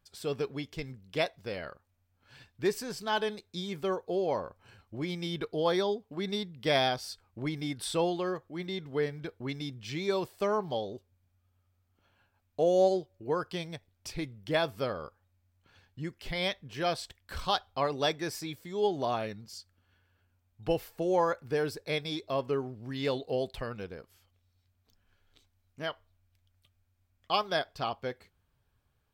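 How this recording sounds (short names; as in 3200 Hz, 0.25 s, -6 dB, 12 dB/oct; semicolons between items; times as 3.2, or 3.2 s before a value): noise floor -75 dBFS; spectral tilt -3.5 dB/oct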